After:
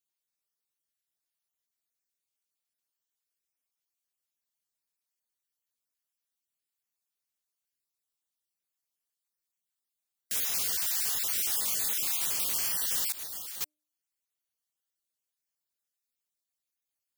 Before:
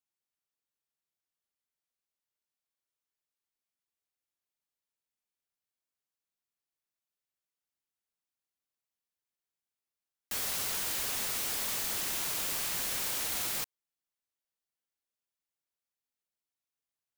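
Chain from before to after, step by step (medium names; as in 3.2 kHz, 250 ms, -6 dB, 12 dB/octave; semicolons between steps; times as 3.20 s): random holes in the spectrogram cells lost 26%; 13.12–13.61 s: expander -27 dBFS; treble shelf 3.2 kHz +9.5 dB; de-hum 302.6 Hz, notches 2; trim -3 dB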